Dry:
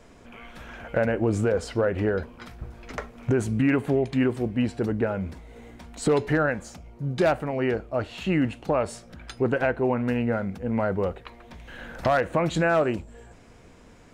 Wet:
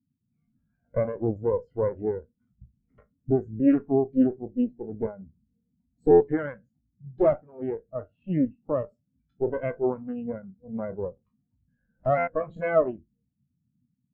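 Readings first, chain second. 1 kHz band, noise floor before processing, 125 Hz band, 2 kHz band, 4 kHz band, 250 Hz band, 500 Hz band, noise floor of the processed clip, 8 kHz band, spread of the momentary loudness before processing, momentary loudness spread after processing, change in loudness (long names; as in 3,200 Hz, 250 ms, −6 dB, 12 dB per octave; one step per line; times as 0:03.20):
−4.0 dB, −51 dBFS, −7.0 dB, −11.0 dB, below −25 dB, −1.5 dB, −0.5 dB, −78 dBFS, below −35 dB, 19 LU, 14 LU, −1.5 dB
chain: peak hold with a decay on every bin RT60 0.40 s
low-pass filter 8,300 Hz 24 dB per octave
harmonic generator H 4 −7 dB, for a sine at −9.5 dBFS
noise in a band 80–270 Hz −41 dBFS
buffer that repeats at 0:06.10/0:12.17, samples 512, times 8
every bin expanded away from the loudest bin 2.5 to 1
level −1.5 dB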